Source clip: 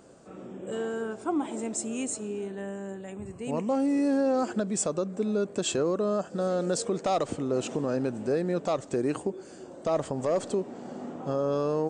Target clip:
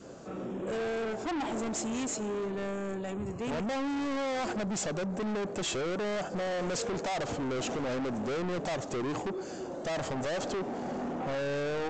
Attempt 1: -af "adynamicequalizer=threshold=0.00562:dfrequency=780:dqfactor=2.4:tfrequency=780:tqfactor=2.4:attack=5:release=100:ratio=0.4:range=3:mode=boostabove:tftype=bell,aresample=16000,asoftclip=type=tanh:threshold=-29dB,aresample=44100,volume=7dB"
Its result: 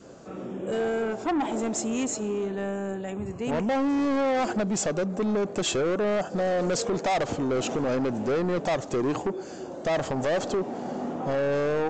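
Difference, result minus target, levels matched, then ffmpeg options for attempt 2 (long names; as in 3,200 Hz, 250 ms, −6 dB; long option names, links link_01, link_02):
soft clipping: distortion −4 dB
-af "adynamicequalizer=threshold=0.00562:dfrequency=780:dqfactor=2.4:tfrequency=780:tqfactor=2.4:attack=5:release=100:ratio=0.4:range=3:mode=boostabove:tftype=bell,aresample=16000,asoftclip=type=tanh:threshold=-38dB,aresample=44100,volume=7dB"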